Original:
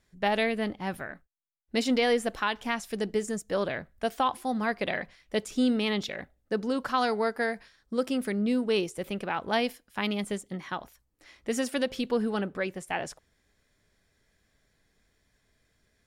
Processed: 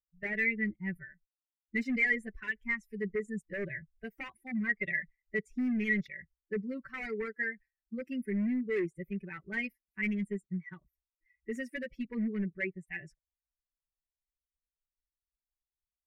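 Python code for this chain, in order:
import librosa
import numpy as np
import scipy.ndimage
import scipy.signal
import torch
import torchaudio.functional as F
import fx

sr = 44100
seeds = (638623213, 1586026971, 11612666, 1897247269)

y = fx.bin_expand(x, sr, power=2.0)
y = y + 0.92 * np.pad(y, (int(5.2 * sr / 1000.0), 0))[:len(y)]
y = np.clip(y, -10.0 ** (-28.5 / 20.0), 10.0 ** (-28.5 / 20.0))
y = fx.curve_eq(y, sr, hz=(430.0, 800.0, 1400.0, 2000.0, 3300.0), db=(0, -22, -11, 12, -20))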